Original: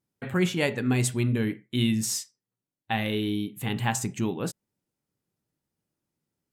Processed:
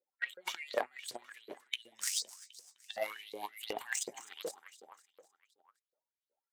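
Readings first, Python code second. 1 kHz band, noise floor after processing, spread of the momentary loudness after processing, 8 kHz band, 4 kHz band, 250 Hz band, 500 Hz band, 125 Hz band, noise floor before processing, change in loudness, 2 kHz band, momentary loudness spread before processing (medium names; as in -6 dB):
-9.0 dB, under -85 dBFS, 18 LU, -6.5 dB, -7.0 dB, -30.5 dB, -10.0 dB, under -40 dB, under -85 dBFS, -12.0 dB, -8.0 dB, 7 LU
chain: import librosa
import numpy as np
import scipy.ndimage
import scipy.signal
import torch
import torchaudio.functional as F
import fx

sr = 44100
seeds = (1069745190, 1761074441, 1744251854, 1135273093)

p1 = fx.spec_quant(x, sr, step_db=30)
p2 = fx.notch(p1, sr, hz=2600.0, q=9.3)
p3 = fx.over_compress(p2, sr, threshold_db=-31.0, ratio=-0.5)
p4 = fx.cheby_harmonics(p3, sr, harmonics=(3,), levels_db=(-11,), full_scale_db=-15.0)
p5 = p4 + fx.echo_feedback(p4, sr, ms=256, feedback_pct=56, wet_db=-17.0, dry=0)
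p6 = fx.filter_lfo_highpass(p5, sr, shape='saw_up', hz=2.7, low_hz=460.0, high_hz=4600.0, q=7.2)
y = p6 * 10.0 ** (1.5 / 20.0)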